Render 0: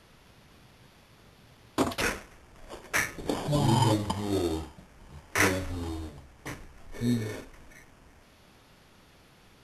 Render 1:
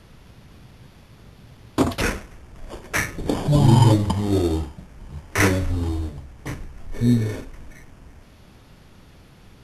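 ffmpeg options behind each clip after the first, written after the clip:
-af "lowshelf=f=270:g=10,volume=3.5dB"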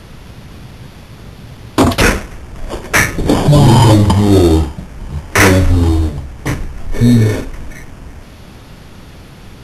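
-af "apsyclip=15.5dB,volume=-2dB"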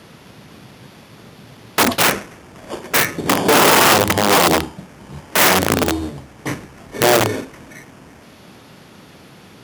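-af "aeval=exprs='(mod(1.5*val(0)+1,2)-1)/1.5':c=same,highpass=170,volume=-4dB"

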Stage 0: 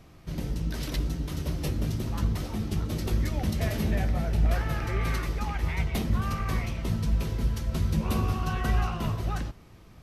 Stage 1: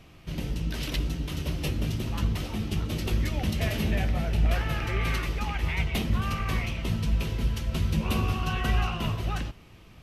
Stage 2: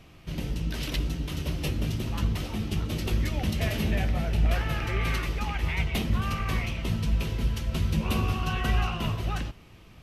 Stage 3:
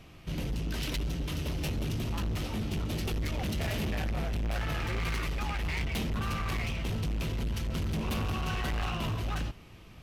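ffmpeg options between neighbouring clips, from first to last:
-af "equalizer=f=2.8k:t=o:w=0.72:g=8.5"
-af anull
-af "asoftclip=type=hard:threshold=-29dB"

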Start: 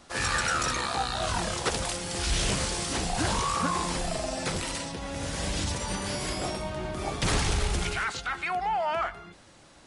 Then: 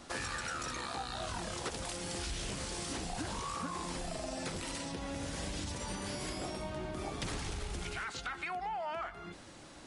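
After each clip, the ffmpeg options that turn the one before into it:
-af "equalizer=f=290:t=o:w=0.73:g=4,acompressor=threshold=-38dB:ratio=6,volume=1dB"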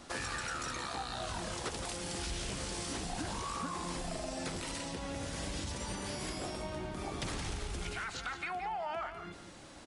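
-af "aecho=1:1:171:0.316"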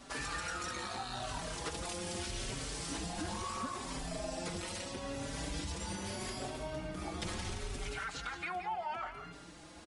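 -filter_complex "[0:a]asplit=2[a][b];[b]adelay=4.7,afreqshift=0.76[c];[a][c]amix=inputs=2:normalize=1,volume=2dB"

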